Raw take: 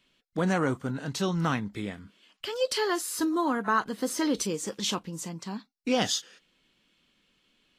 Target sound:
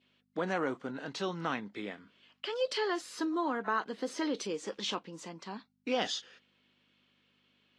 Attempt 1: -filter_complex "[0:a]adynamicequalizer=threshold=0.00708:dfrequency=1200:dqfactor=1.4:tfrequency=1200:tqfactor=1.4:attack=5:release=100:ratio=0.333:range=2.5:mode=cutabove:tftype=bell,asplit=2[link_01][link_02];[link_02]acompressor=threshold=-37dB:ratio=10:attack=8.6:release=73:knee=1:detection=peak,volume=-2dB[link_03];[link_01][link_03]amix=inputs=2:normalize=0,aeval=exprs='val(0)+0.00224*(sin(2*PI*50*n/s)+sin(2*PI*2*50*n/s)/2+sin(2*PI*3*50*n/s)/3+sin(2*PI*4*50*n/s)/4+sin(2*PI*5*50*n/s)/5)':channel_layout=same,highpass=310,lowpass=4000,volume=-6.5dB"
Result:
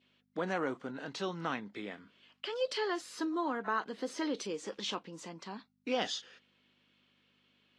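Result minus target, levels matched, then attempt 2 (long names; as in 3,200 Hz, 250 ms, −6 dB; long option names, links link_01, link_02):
downward compressor: peak gain reduction +7 dB
-filter_complex "[0:a]adynamicequalizer=threshold=0.00708:dfrequency=1200:dqfactor=1.4:tfrequency=1200:tqfactor=1.4:attack=5:release=100:ratio=0.333:range=2.5:mode=cutabove:tftype=bell,asplit=2[link_01][link_02];[link_02]acompressor=threshold=-29dB:ratio=10:attack=8.6:release=73:knee=1:detection=peak,volume=-2dB[link_03];[link_01][link_03]amix=inputs=2:normalize=0,aeval=exprs='val(0)+0.00224*(sin(2*PI*50*n/s)+sin(2*PI*2*50*n/s)/2+sin(2*PI*3*50*n/s)/3+sin(2*PI*4*50*n/s)/4+sin(2*PI*5*50*n/s)/5)':channel_layout=same,highpass=310,lowpass=4000,volume=-6.5dB"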